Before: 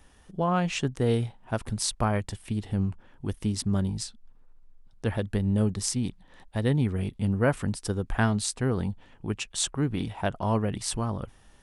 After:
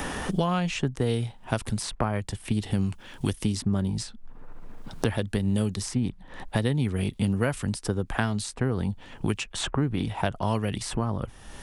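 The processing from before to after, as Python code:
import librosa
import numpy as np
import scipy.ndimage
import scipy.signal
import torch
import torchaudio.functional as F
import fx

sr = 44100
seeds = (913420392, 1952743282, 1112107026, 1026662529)

y = fx.band_squash(x, sr, depth_pct=100)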